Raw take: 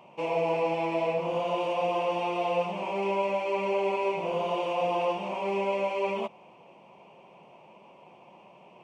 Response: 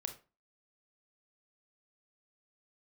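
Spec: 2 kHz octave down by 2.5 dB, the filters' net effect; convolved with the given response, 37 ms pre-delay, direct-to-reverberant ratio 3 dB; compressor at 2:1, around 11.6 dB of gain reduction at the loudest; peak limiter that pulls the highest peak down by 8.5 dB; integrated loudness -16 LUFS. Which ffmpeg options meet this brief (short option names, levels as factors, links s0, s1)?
-filter_complex "[0:a]equalizer=f=2000:t=o:g=-3.5,acompressor=threshold=0.00501:ratio=2,alimiter=level_in=4.22:limit=0.0631:level=0:latency=1,volume=0.237,asplit=2[s0][s1];[1:a]atrim=start_sample=2205,adelay=37[s2];[s1][s2]afir=irnorm=-1:irlink=0,volume=0.841[s3];[s0][s3]amix=inputs=2:normalize=0,volume=25.1"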